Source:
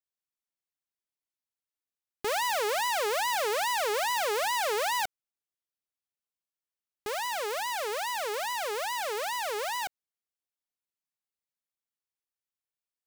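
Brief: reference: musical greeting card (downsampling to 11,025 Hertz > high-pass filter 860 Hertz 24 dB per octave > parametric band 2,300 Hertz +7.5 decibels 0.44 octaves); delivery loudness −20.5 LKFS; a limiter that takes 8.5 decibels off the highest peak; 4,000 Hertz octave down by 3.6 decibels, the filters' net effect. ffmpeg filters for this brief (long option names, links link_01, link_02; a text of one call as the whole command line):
ffmpeg -i in.wav -af "equalizer=frequency=4000:width_type=o:gain=-7,alimiter=level_in=8.5dB:limit=-24dB:level=0:latency=1,volume=-8.5dB,aresample=11025,aresample=44100,highpass=frequency=860:width=0.5412,highpass=frequency=860:width=1.3066,equalizer=frequency=2300:width_type=o:width=0.44:gain=7.5,volume=18.5dB" out.wav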